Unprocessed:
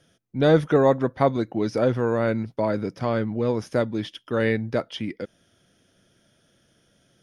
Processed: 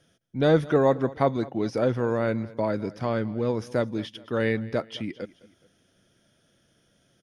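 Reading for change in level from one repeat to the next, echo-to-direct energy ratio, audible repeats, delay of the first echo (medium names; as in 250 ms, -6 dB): -7.0 dB, -19.5 dB, 2, 211 ms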